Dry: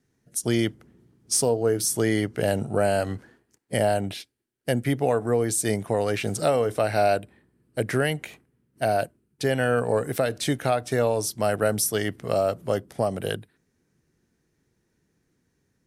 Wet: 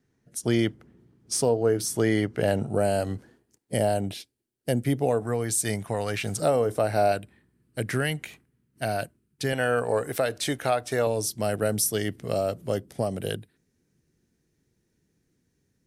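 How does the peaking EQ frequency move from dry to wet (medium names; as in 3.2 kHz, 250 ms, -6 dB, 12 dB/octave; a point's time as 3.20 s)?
peaking EQ -6.5 dB 1.9 oct
13 kHz
from 2.70 s 1.6 kHz
from 5.23 s 390 Hz
from 6.40 s 2.6 kHz
from 7.12 s 580 Hz
from 9.53 s 170 Hz
from 11.07 s 1.1 kHz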